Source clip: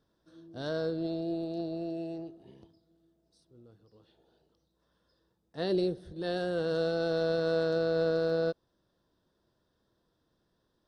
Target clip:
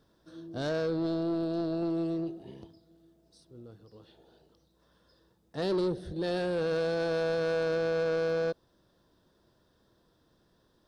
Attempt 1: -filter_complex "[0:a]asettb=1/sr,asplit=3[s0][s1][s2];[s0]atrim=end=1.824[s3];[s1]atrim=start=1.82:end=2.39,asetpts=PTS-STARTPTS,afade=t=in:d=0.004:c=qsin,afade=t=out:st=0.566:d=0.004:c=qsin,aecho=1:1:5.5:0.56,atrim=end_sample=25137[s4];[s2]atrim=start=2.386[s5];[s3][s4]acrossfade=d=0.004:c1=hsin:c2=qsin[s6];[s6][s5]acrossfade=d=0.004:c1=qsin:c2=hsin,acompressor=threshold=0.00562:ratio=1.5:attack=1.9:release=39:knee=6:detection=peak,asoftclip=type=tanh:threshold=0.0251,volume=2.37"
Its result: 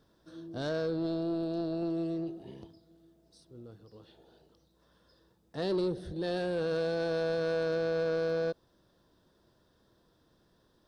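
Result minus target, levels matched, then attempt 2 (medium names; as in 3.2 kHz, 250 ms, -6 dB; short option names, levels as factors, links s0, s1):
compression: peak gain reduction +3 dB
-filter_complex "[0:a]asettb=1/sr,asplit=3[s0][s1][s2];[s0]atrim=end=1.824[s3];[s1]atrim=start=1.82:end=2.39,asetpts=PTS-STARTPTS,afade=t=in:d=0.004:c=qsin,afade=t=out:st=0.566:d=0.004:c=qsin,aecho=1:1:5.5:0.56,atrim=end_sample=25137[s4];[s2]atrim=start=2.386[s5];[s3][s4]acrossfade=d=0.004:c1=hsin:c2=qsin[s6];[s6][s5]acrossfade=d=0.004:c1=qsin:c2=hsin,acompressor=threshold=0.015:ratio=1.5:attack=1.9:release=39:knee=6:detection=peak,asoftclip=type=tanh:threshold=0.0251,volume=2.37"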